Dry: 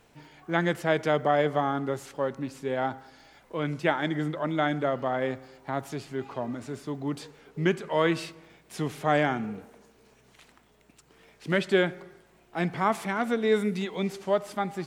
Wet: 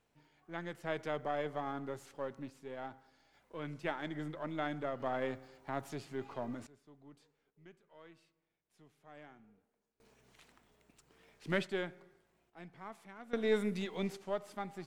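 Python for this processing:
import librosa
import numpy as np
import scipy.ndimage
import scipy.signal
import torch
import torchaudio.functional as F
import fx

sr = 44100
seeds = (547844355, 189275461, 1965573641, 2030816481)

y = np.where(x < 0.0, 10.0 ** (-3.0 / 20.0) * x, x)
y = fx.tremolo_random(y, sr, seeds[0], hz=1.2, depth_pct=95)
y = F.gain(torch.from_numpy(y), -6.0).numpy()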